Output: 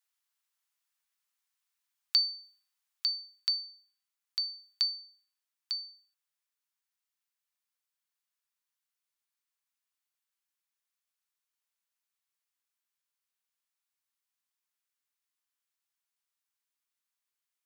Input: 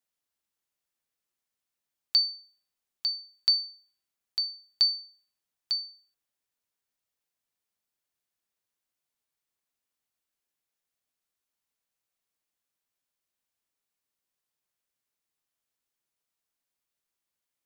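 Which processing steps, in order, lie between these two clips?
in parallel at +3 dB: compressor, threshold -33 dBFS, peak gain reduction 13.5 dB; on the sum: HPF 910 Hz 24 dB/oct; vocal rider 0.5 s; gain -7.5 dB

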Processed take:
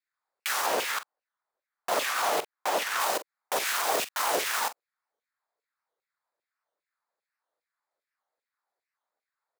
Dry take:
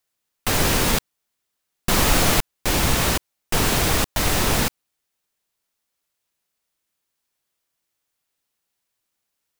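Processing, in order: Wiener smoothing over 15 samples; dynamic EQ 2200 Hz, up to -4 dB, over -37 dBFS, Q 1; HPF 130 Hz 6 dB/oct; 0.66–3 high shelf 3900 Hz -7 dB; limiter -18 dBFS, peak gain reduction 8.5 dB; LFO high-pass saw down 2.5 Hz 450–2700 Hz; doubler 44 ms -13.5 dB; record warp 78 rpm, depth 250 cents

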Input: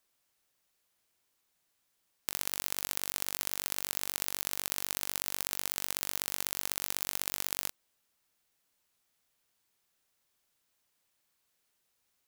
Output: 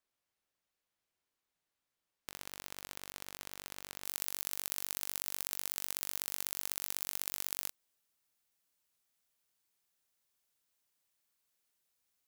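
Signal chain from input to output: high shelf 5100 Hz -8 dB, from 4.05 s +4.5 dB; gain -7 dB

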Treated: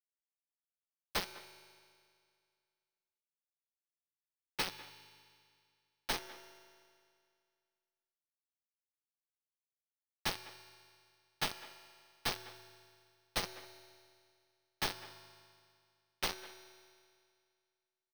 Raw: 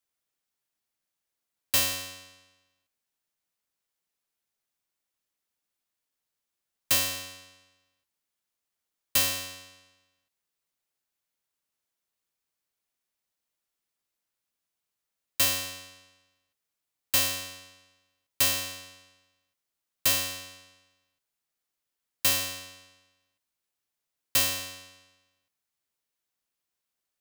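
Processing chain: spectral contrast lowered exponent 0.16; low-pass opened by the level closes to 1400 Hz, open at -25.5 dBFS; spectral gate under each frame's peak -15 dB weak; bell 2900 Hz -10 dB 2.1 oct; comb 5.8 ms, depth 76%; in parallel at -3 dB: limiter -42 dBFS, peak gain reduction 11 dB; on the sum: companded quantiser 2-bit; polynomial smoothing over 15 samples; tempo 1.5×; speakerphone echo 0.2 s, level -17 dB; on a send at -11.5 dB: reverb RT60 2.2 s, pre-delay 3 ms; on the sum: gain +10.5 dB

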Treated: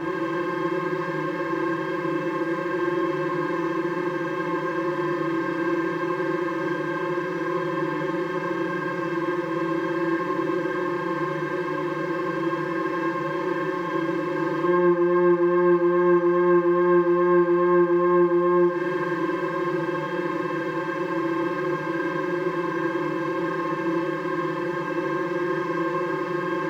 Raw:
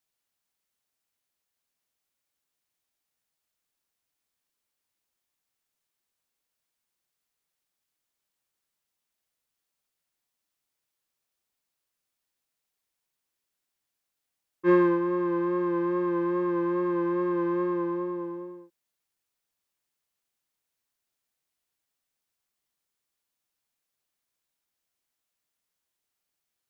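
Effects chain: per-bin compression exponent 0.2; compressor 6:1, threshold -28 dBFS, peak gain reduction 12.5 dB; FDN reverb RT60 1.1 s, low-frequency decay 0.9×, high-frequency decay 0.8×, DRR -9.5 dB

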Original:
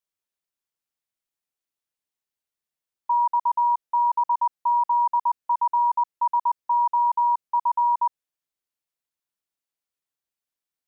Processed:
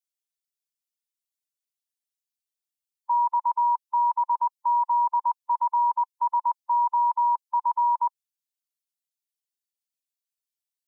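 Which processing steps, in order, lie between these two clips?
per-bin expansion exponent 1.5; HPF 1100 Hz 6 dB/oct; gain +2.5 dB

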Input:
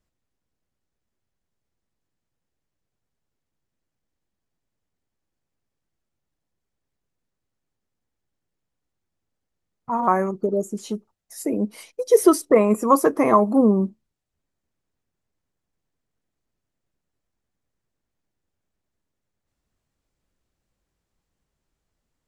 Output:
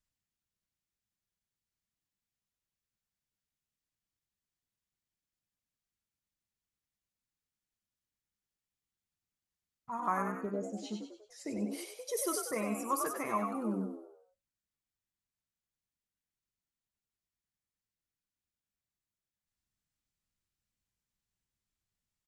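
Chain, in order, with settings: 10.22–11.63 air absorption 140 m; vocal rider within 4 dB 0.5 s; passive tone stack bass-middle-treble 5-5-5; frequency-shifting echo 96 ms, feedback 44%, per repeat +70 Hz, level -5 dB; on a send at -15 dB: reverb, pre-delay 5 ms

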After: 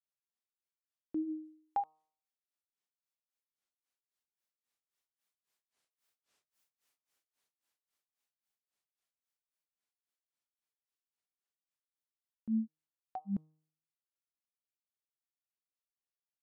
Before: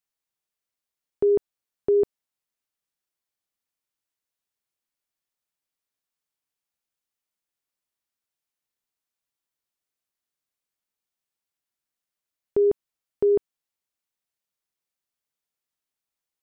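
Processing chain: Doppler pass-by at 6.52, 18 m/s, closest 9.6 m; low shelf 220 Hz -9.5 dB; grains 0.248 s, grains 3.7/s, spray 13 ms, pitch spread up and down by 12 st; de-hum 155.8 Hz, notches 8; gain +12 dB

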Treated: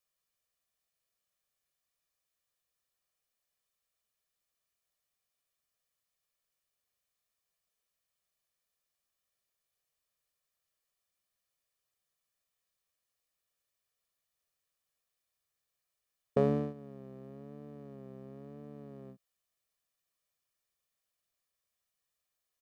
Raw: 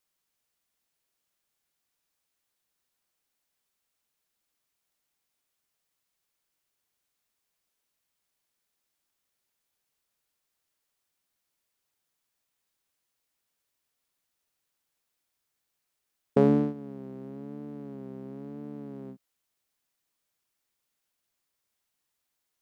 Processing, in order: comb 1.7 ms, depth 49%; gain -6 dB

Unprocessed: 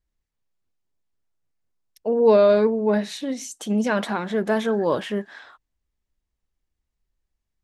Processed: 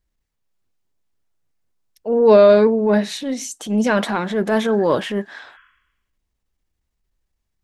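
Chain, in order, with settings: spectral repair 5.5–6.21, 1000–3400 Hz both; transient shaper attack -7 dB, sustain 0 dB; gain +5.5 dB

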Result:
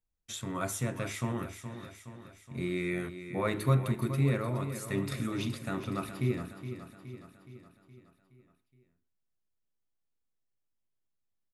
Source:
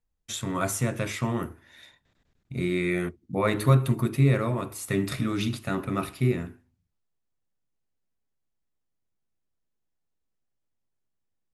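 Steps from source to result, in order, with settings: feedback echo 0.419 s, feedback 55%, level -10.5 dB; gain -6.5 dB

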